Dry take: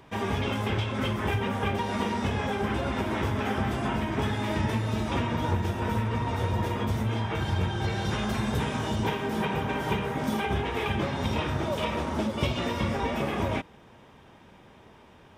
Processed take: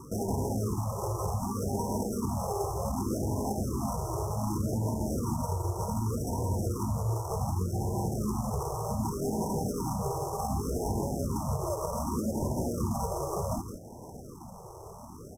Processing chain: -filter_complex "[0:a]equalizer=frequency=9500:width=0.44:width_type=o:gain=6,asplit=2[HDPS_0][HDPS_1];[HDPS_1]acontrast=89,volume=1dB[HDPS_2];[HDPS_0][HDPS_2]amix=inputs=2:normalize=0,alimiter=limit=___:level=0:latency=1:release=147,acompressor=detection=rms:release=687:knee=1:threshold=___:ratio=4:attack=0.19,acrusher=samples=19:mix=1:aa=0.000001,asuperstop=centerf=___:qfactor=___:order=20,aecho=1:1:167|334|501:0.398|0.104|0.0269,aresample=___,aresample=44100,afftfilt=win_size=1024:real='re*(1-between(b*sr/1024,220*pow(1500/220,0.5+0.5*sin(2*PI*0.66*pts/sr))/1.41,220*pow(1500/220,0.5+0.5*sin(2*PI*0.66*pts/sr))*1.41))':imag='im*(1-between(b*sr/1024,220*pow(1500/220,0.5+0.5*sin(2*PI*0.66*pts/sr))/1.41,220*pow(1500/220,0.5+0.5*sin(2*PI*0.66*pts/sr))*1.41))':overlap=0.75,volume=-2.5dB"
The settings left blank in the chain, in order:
-9.5dB, -22dB, 2600, 0.62, 32000